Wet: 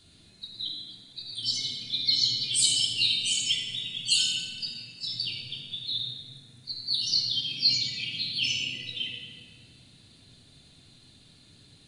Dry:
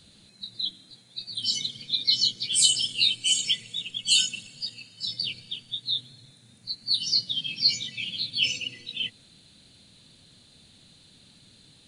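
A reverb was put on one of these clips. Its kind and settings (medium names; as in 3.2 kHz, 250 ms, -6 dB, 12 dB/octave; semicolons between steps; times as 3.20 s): simulated room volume 3600 m³, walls mixed, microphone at 3.2 m; trim -5 dB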